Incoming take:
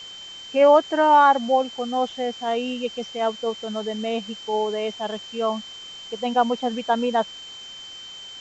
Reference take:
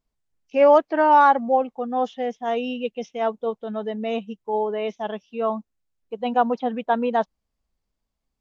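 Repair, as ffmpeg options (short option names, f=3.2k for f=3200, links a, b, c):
-af "bandreject=f=3.1k:w=30,afwtdn=0.0063"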